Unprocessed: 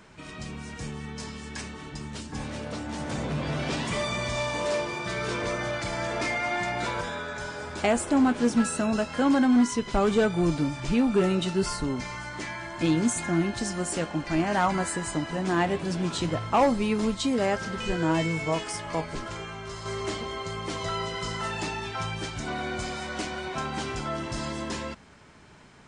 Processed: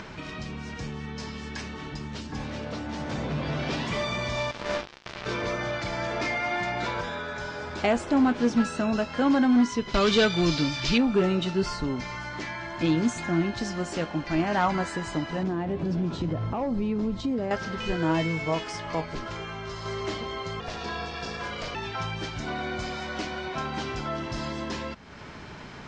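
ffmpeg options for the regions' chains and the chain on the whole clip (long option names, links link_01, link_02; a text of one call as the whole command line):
ffmpeg -i in.wav -filter_complex "[0:a]asettb=1/sr,asplit=3[link_01][link_02][link_03];[link_01]atrim=end=4.514[link_04];[link_02]atrim=start=4.51:end=5.26,asetpts=PTS-STARTPTS,afade=type=in:duration=0.004:curve=qsin,afade=type=out:start_time=0.746:duration=0.004:curve=qsin,highshelf=frequency=2000:gain=-5.5,acrusher=bits=3:mix=0:aa=0.5,asplit=2[link_05][link_06];[link_06]adelay=15,volume=-9.5dB[link_07];[link_05][link_07]amix=inputs=2:normalize=0,atrim=end_sample=33075[link_08];[link_03]atrim=start=5.256[link_09];[link_04][link_08]acrossfade=duration=0.004:curve1=hsin:curve2=qsin[link_10];[link_10][link_09]acrossfade=duration=0.004:curve1=qsin:curve2=hsin,asettb=1/sr,asplit=3[link_11][link_12][link_13];[link_11]atrim=end=9.944[link_14];[link_12]atrim=start=9.94:end=10.98,asetpts=PTS-STARTPTS,afade=type=in:duration=0.004:curve=qsin,afade=type=out:start_time=1.036:duration=0.004:curve=qsin,equalizer=frequency=4400:width_type=o:width=2:gain=15,bandreject=frequency=800:width=8.7[link_15];[link_13]atrim=start=10.976[link_16];[link_14][link_15]acrossfade=duration=0.004:curve1=hsin:curve2=qsin[link_17];[link_17][link_16]acrossfade=duration=0.004:curve1=qsin:curve2=hsin,asettb=1/sr,asplit=3[link_18][link_19][link_20];[link_18]atrim=end=15.434[link_21];[link_19]atrim=start=15.43:end=17.51,asetpts=PTS-STARTPTS,afade=type=in:duration=0.004:curve=qsin,afade=type=out:start_time=2.076:duration=0.004:curve=qsin,acompressor=threshold=-29dB:ratio=5:attack=3.2:release=140:knee=1:detection=peak,tiltshelf=frequency=780:gain=7[link_22];[link_20]atrim=start=17.506[link_23];[link_21][link_22]acrossfade=duration=0.004:curve1=hsin:curve2=qsin[link_24];[link_24][link_23]acrossfade=duration=0.004:curve1=qsin:curve2=hsin,asettb=1/sr,asplit=3[link_25][link_26][link_27];[link_25]atrim=end=20.604[link_28];[link_26]atrim=start=20.6:end=21.75,asetpts=PTS-STARTPTS,afade=type=in:duration=0.004:curve=qsin,afade=type=out:start_time=1.146:duration=0.004:curve=qsin,equalizer=frequency=4900:width_type=o:width=0.23:gain=4,aeval=exprs='val(0)*sin(2*PI*320*n/s)':channel_layout=same[link_29];[link_27]atrim=start=21.746[link_30];[link_28][link_29]acrossfade=duration=0.004:curve1=hsin:curve2=qsin[link_31];[link_31][link_30]acrossfade=duration=0.004:curve1=qsin:curve2=hsin,lowpass=frequency=5900:width=0.5412,lowpass=frequency=5900:width=1.3066,acompressor=mode=upward:threshold=-31dB:ratio=2.5" out.wav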